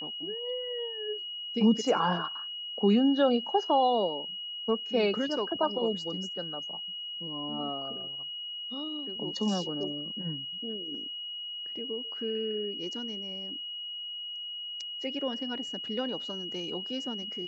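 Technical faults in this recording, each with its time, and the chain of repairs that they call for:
whine 2.9 kHz -36 dBFS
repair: band-stop 2.9 kHz, Q 30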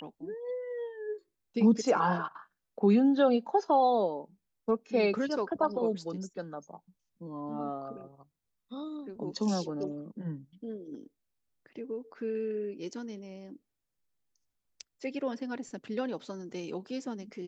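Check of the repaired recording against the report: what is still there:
nothing left

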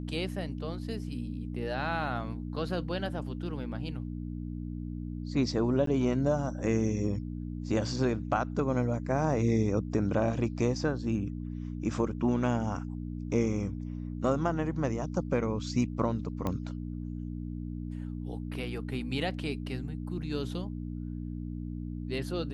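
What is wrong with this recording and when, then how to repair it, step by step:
hum 60 Hz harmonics 5 -37 dBFS
5.86–5.87 s: dropout 13 ms
16.47 s: pop -19 dBFS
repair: de-click; de-hum 60 Hz, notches 5; interpolate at 5.86 s, 13 ms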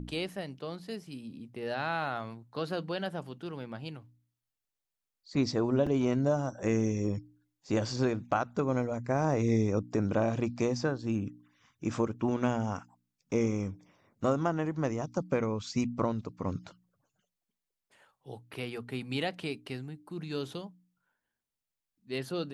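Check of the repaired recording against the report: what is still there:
nothing left

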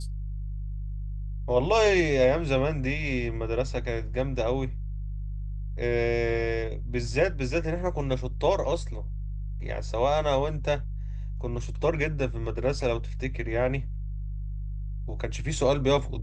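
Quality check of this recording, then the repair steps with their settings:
hum 50 Hz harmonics 3 -33 dBFS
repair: de-hum 50 Hz, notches 3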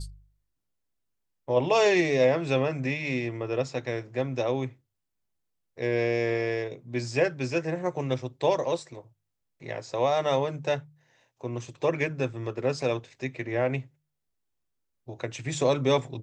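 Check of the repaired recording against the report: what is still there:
nothing left

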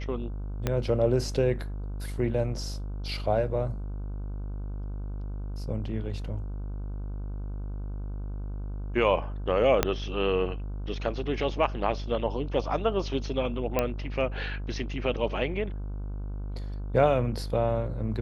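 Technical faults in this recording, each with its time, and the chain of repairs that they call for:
buzz 50 Hz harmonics 31 -34 dBFS
0.67 s: pop -13 dBFS
9.83 s: pop -6 dBFS
13.79 s: pop -11 dBFS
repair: de-click; de-hum 50 Hz, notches 31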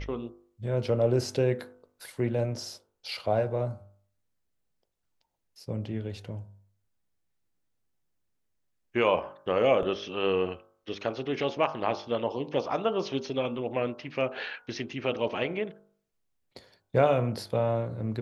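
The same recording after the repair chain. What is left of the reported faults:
0.67 s: pop
9.83 s: pop

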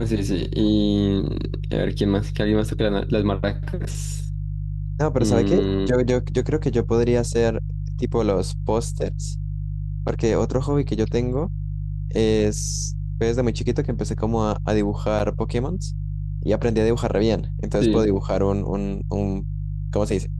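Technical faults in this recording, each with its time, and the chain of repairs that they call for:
hum 50 Hz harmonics 3 -27 dBFS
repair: de-hum 50 Hz, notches 3

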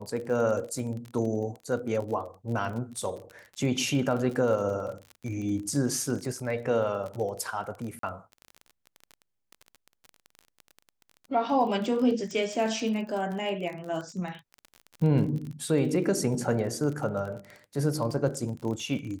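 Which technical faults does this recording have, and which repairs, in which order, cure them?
crackle 30 per s -34 dBFS
7.99–8.03 s: dropout 43 ms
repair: de-click; interpolate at 7.99 s, 43 ms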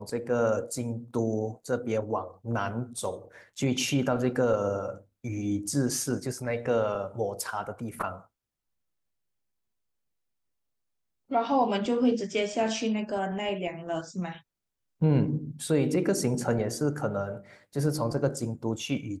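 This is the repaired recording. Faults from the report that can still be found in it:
nothing left

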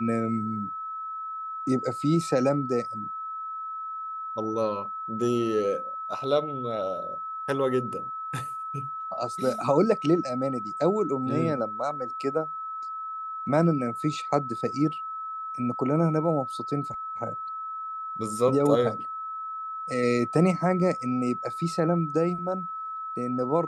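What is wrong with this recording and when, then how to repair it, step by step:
whine 1.3 kHz -32 dBFS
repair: band-stop 1.3 kHz, Q 30

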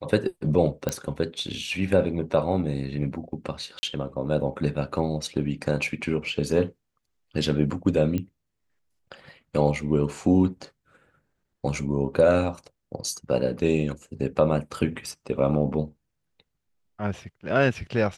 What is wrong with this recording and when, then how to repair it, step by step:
0.89 s: pop -12 dBFS
3.79–3.83 s: dropout 40 ms
8.18 s: pop -17 dBFS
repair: de-click; interpolate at 3.79 s, 40 ms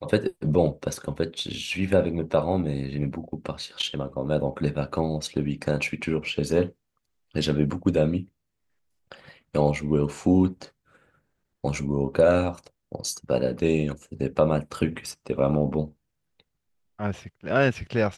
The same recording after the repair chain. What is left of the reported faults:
nothing left

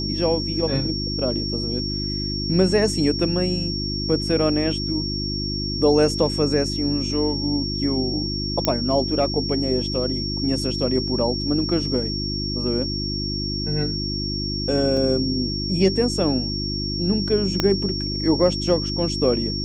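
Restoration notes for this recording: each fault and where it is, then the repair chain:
hum 50 Hz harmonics 7 -28 dBFS
whine 5.5 kHz -27 dBFS
8.65 s: pop -4 dBFS
14.97 s: dropout 2.8 ms
17.60 s: pop -5 dBFS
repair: de-click; de-hum 50 Hz, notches 7; band-stop 5.5 kHz, Q 30; interpolate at 14.97 s, 2.8 ms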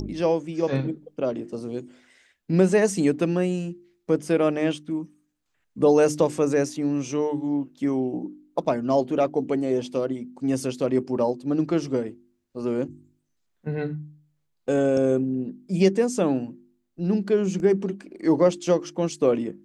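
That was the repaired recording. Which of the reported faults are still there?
17.60 s: pop

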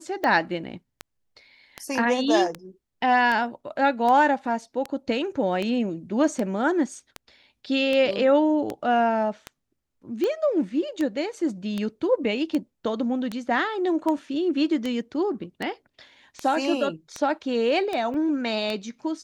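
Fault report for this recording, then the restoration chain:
tick 78 rpm -15 dBFS
18.14 s: dropout 2.4 ms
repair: de-click; interpolate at 18.14 s, 2.4 ms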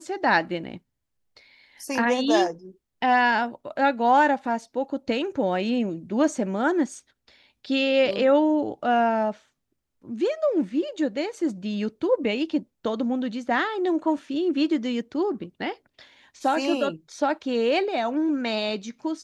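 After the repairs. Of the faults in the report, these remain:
nothing left

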